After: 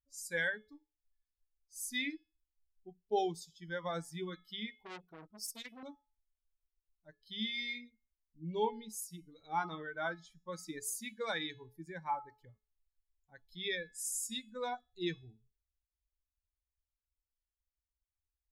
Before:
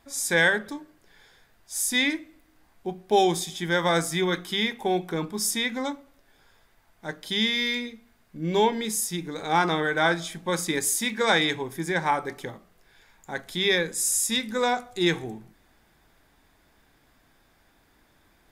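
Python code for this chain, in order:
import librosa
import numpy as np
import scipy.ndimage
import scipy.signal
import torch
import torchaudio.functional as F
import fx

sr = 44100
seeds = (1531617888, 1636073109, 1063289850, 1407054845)

y = fx.bin_expand(x, sr, power=2.0)
y = fx.comb_fb(y, sr, f0_hz=430.0, decay_s=0.37, harmonics='all', damping=0.0, mix_pct=60)
y = fx.transformer_sat(y, sr, knee_hz=3200.0, at=(4.78, 5.83))
y = y * 10.0 ** (-3.0 / 20.0)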